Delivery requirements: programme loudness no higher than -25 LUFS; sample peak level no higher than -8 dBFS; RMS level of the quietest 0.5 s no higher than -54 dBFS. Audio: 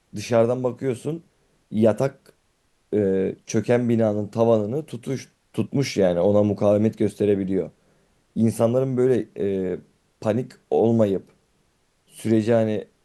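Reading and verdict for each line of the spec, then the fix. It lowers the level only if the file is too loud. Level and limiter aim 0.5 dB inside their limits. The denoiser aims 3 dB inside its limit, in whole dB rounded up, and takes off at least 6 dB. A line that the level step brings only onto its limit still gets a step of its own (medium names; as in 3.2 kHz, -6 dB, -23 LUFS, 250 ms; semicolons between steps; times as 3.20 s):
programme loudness -22.5 LUFS: fail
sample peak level -6.0 dBFS: fail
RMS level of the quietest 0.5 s -66 dBFS: pass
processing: trim -3 dB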